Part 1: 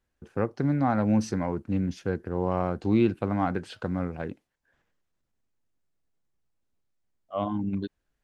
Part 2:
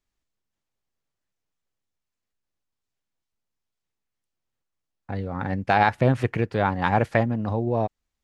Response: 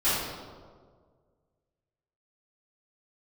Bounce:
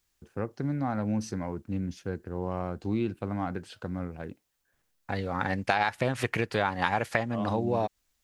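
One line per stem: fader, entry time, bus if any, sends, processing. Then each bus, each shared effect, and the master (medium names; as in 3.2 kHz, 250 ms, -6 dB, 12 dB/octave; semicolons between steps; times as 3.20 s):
-6.0 dB, 0.00 s, no send, treble shelf 5.6 kHz +7.5 dB
+3.0 dB, 0.00 s, no send, tilt EQ +3 dB/octave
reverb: none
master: bass shelf 100 Hz +5 dB; compression 5:1, threshold -23 dBFS, peak gain reduction 11 dB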